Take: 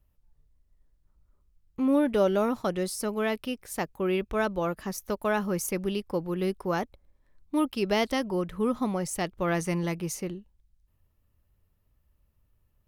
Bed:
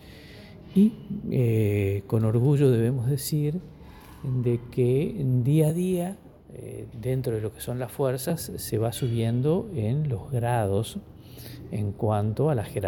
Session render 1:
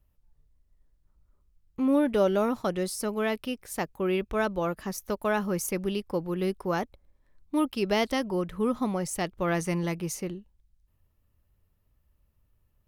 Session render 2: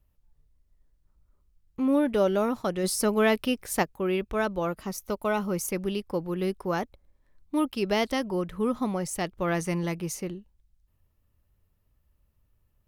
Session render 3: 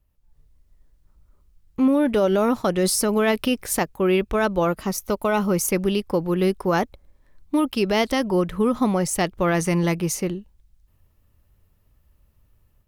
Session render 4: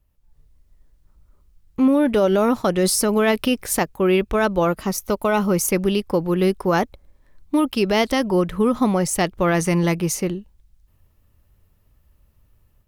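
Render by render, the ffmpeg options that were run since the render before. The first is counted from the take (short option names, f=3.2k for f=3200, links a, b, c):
-af anull
-filter_complex "[0:a]asplit=3[a][b][c];[a]afade=t=out:st=2.83:d=0.02[d];[b]acontrast=51,afade=t=in:st=2.83:d=0.02,afade=t=out:st=3.82:d=0.02[e];[c]afade=t=in:st=3.82:d=0.02[f];[d][e][f]amix=inputs=3:normalize=0,asettb=1/sr,asplit=3[g][h][i];[g]atrim=end=4.754[j];[h]atrim=start=4.75:end=5.61,asetpts=PTS-STARTPTS,afade=t=in:d=0.004:c=qsin,afade=t=out:st=0.856:d=0.004:c=qsin,asuperstop=centerf=1700:order=4:qfactor=7.9[k];[i]atrim=start=5.606[l];[j][k]acrossfade=d=0.004:c1=hsin:c2=qsin[m];[m][l]acrossfade=d=0.004:c1=qsin:c2=hsin"
-af "dynaudnorm=f=200:g=3:m=8.5dB,alimiter=limit=-11dB:level=0:latency=1:release=59"
-af "volume=2dB"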